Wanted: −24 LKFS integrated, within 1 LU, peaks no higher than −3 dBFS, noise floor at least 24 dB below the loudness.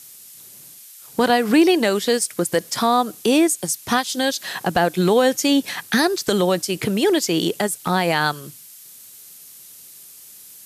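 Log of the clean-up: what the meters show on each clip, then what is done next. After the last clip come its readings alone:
background noise floor −43 dBFS; target noise floor −44 dBFS; integrated loudness −19.5 LKFS; sample peak −4.0 dBFS; target loudness −24.0 LKFS
→ broadband denoise 6 dB, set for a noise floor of −43 dBFS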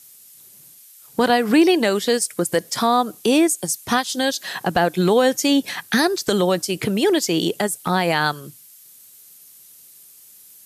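background noise floor −47 dBFS; integrated loudness −19.5 LKFS; sample peak −4.0 dBFS; target loudness −24.0 LKFS
→ level −4.5 dB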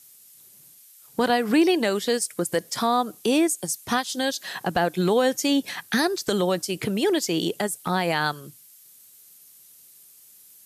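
integrated loudness −24.0 LKFS; sample peak −8.5 dBFS; background noise floor −52 dBFS

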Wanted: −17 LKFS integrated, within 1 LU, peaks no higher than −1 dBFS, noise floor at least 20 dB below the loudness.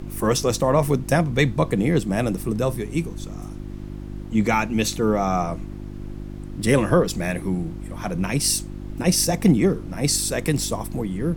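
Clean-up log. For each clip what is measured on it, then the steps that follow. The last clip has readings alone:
mains hum 50 Hz; hum harmonics up to 350 Hz; level of the hum −32 dBFS; background noise floor −35 dBFS; target noise floor −42 dBFS; integrated loudness −22.0 LKFS; sample peak −5.5 dBFS; target loudness −17.0 LKFS
→ hum removal 50 Hz, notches 7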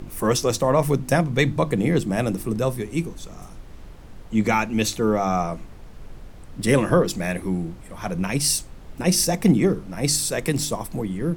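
mains hum none found; background noise floor −42 dBFS; target noise floor −43 dBFS
→ noise reduction from a noise print 6 dB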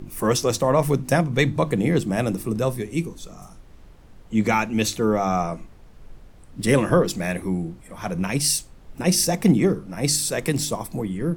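background noise floor −47 dBFS; integrated loudness −22.5 LKFS; sample peak −5.5 dBFS; target loudness −17.0 LKFS
→ level +5.5 dB
brickwall limiter −1 dBFS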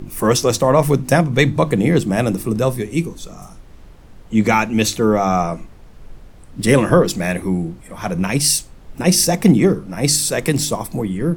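integrated loudness −17.0 LKFS; sample peak −1.0 dBFS; background noise floor −41 dBFS

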